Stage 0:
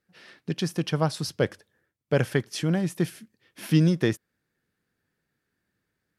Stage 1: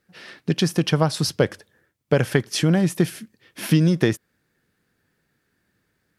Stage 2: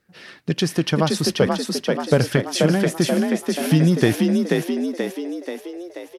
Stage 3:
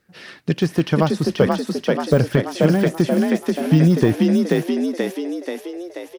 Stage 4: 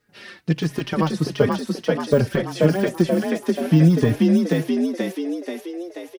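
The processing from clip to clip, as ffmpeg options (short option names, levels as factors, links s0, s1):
-af "acompressor=threshold=0.0794:ratio=5,volume=2.66"
-filter_complex "[0:a]aphaser=in_gain=1:out_gain=1:delay=3.5:decay=0.21:speed=0.49:type=sinusoidal,asplit=9[s0][s1][s2][s3][s4][s5][s6][s7][s8];[s1]adelay=483,afreqshift=43,volume=0.708[s9];[s2]adelay=966,afreqshift=86,volume=0.398[s10];[s3]adelay=1449,afreqshift=129,volume=0.221[s11];[s4]adelay=1932,afreqshift=172,volume=0.124[s12];[s5]adelay=2415,afreqshift=215,volume=0.07[s13];[s6]adelay=2898,afreqshift=258,volume=0.0389[s14];[s7]adelay=3381,afreqshift=301,volume=0.0219[s15];[s8]adelay=3864,afreqshift=344,volume=0.0122[s16];[s0][s9][s10][s11][s12][s13][s14][s15][s16]amix=inputs=9:normalize=0"
-af "deesser=0.85,volume=1.33"
-filter_complex "[0:a]bandreject=f=68.91:t=h:w=4,bandreject=f=137.82:t=h:w=4,asplit=2[s0][s1];[s1]adelay=4.3,afreqshift=-1.5[s2];[s0][s2]amix=inputs=2:normalize=1,volume=1.12"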